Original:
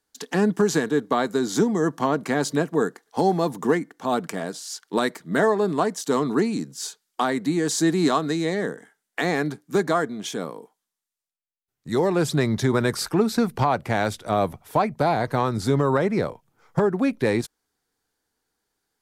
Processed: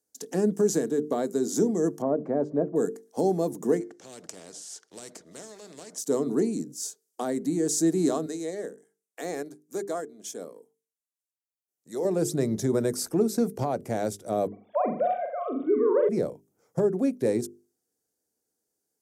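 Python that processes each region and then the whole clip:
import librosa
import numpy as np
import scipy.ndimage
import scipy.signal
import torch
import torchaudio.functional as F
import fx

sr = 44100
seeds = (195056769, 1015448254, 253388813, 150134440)

y = fx.chain(x, sr, fx.law_mismatch(coded='mu'),
    fx.cheby1_lowpass(hz=990.0, order=2),
    fx.peak_eq(hz=600.0, db=6.0, octaves=0.2), at=(2.02, 2.76))
y = fx.chain(y, sr, fx.block_float(bits=7),
    fx.lowpass(hz=5000.0, slope=12),
    fx.spectral_comp(ratio=4.0), at=(3.8, 5.98))
y = fx.chain(y, sr, fx.highpass(hz=560.0, slope=6),
    fx.transient(attack_db=-3, sustain_db=-8), at=(8.26, 12.05))
y = fx.chain(y, sr, fx.sine_speech(),
    fx.room_flutter(wall_m=7.3, rt60_s=0.51), at=(14.47, 16.09))
y = fx.highpass(y, sr, hz=250.0, slope=6)
y = fx.band_shelf(y, sr, hz=1900.0, db=-15.0, octaves=2.7)
y = fx.hum_notches(y, sr, base_hz=50, count=9)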